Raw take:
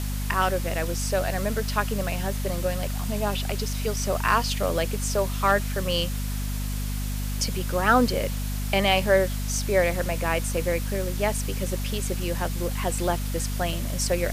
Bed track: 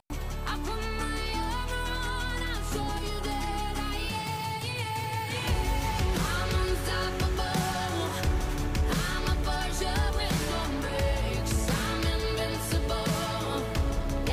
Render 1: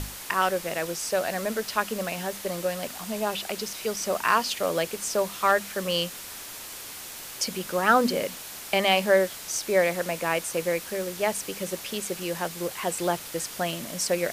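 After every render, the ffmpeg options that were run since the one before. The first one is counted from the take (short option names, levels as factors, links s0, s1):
-af "bandreject=f=50:t=h:w=6,bandreject=f=100:t=h:w=6,bandreject=f=150:t=h:w=6,bandreject=f=200:t=h:w=6,bandreject=f=250:t=h:w=6"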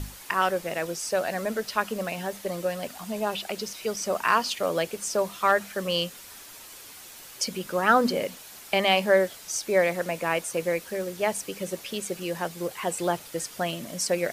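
-af "afftdn=nr=7:nf=-40"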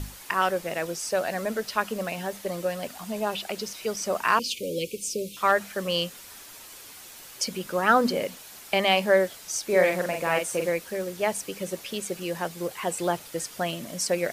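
-filter_complex "[0:a]asettb=1/sr,asplit=3[s0][s1][s2];[s0]atrim=end=4.394[s3];[s1]atrim=start=4.39:end=5.37,asetpts=PTS-STARTPTS,afade=t=in:d=0.004:c=qsin,afade=t=out:st=0.976:d=0.004:c=qsin,asuperstop=centerf=1100:order=20:qfactor=0.64[s4];[s2]atrim=start=5.366[s5];[s3][s4]acrossfade=d=0.004:c1=hsin:c2=qsin[s6];[s6][s5]acrossfade=d=0.004:c1=qsin:c2=hsin,asettb=1/sr,asplit=3[s7][s8][s9];[s7]atrim=end=9.654[s10];[s8]atrim=start=9.65:end=10.7,asetpts=PTS-STARTPTS,afade=t=in:d=0.004:c=qsin,afade=t=out:st=1.046:d=0.004:c=qsin,asplit=2[s11][s12];[s12]adelay=44,volume=0.631[s13];[s11][s13]amix=inputs=2:normalize=0,atrim=end_sample=46305[s14];[s9]atrim=start=10.696[s15];[s10][s14]acrossfade=d=0.004:c1=hsin:c2=qsin[s16];[s16][s15]acrossfade=d=0.004:c1=qsin:c2=hsin"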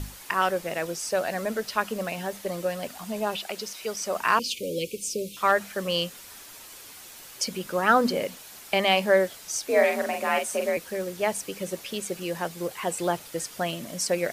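-filter_complex "[0:a]asettb=1/sr,asplit=3[s0][s1][s2];[s0]atrim=end=3.364[s3];[s1]atrim=start=3.36:end=4.16,asetpts=PTS-STARTPTS,afade=t=in:d=0.004:c=qsin,afade=t=out:st=0.796:d=0.004:c=qsin,lowshelf=f=290:g=-8[s4];[s2]atrim=start=4.156[s5];[s3][s4]acrossfade=d=0.004:c1=hsin:c2=qsin[s6];[s6][s5]acrossfade=d=0.004:c1=qsin:c2=hsin,asettb=1/sr,asplit=3[s7][s8][s9];[s7]atrim=end=9.674[s10];[s8]atrim=start=9.67:end=10.77,asetpts=PTS-STARTPTS,afade=t=in:d=0.004:c=qsin,afade=t=out:st=1.096:d=0.004:c=qsin,afreqshift=52[s11];[s9]atrim=start=10.766[s12];[s10][s11]acrossfade=d=0.004:c1=hsin:c2=qsin[s13];[s13][s12]acrossfade=d=0.004:c1=qsin:c2=hsin"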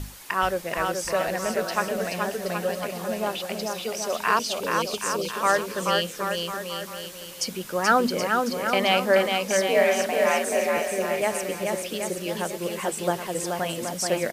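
-af "aecho=1:1:430|774|1049|1269|1445:0.631|0.398|0.251|0.158|0.1"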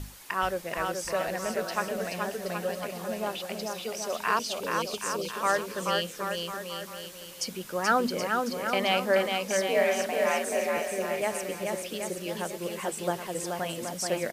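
-af "volume=0.596"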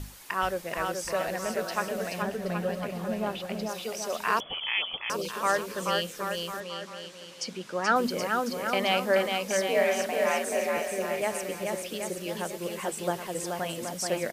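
-filter_complex "[0:a]asettb=1/sr,asplit=3[s0][s1][s2];[s0]atrim=end=2.224[s3];[s1]atrim=start=2.22:end=3.69,asetpts=PTS-STARTPTS,afade=t=in:d=0.004:c=qsin,afade=t=out:st=1.466:d=0.004:c=qsin,bass=f=250:g=8,treble=f=4000:g=-7[s4];[s2]atrim=start=3.686[s5];[s3][s4]acrossfade=d=0.004:c1=hsin:c2=qsin[s6];[s6][s5]acrossfade=d=0.004:c1=qsin:c2=hsin,asettb=1/sr,asplit=3[s7][s8][s9];[s7]atrim=end=4.404[s10];[s8]atrim=start=4.4:end=5.1,asetpts=PTS-STARTPTS,afade=t=in:d=0.004:c=qsin,afade=t=out:st=0.696:d=0.004:c=qsin,lowpass=f=3100:t=q:w=0.5098,lowpass=f=3100:t=q:w=0.6013,lowpass=f=3100:t=q:w=0.9,lowpass=f=3100:t=q:w=2.563,afreqshift=-3600[s11];[s9]atrim=start=5.096[s12];[s10][s11]acrossfade=d=0.004:c1=hsin:c2=qsin[s13];[s13][s12]acrossfade=d=0.004:c1=qsin:c2=hsin,asettb=1/sr,asplit=3[s14][s15][s16];[s14]atrim=end=6.604[s17];[s15]atrim=start=6.6:end=7.96,asetpts=PTS-STARTPTS,afade=t=in:d=0.004:c=qsin,afade=t=out:st=1.356:d=0.004:c=qsin,highpass=130,lowpass=6200[s18];[s16]atrim=start=7.956[s19];[s17][s18]acrossfade=d=0.004:c1=hsin:c2=qsin[s20];[s20][s19]acrossfade=d=0.004:c1=qsin:c2=hsin"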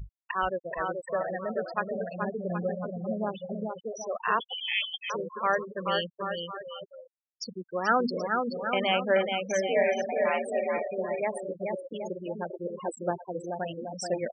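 -af "afftfilt=real='re*gte(hypot(re,im),0.0562)':imag='im*gte(hypot(re,im),0.0562)':win_size=1024:overlap=0.75"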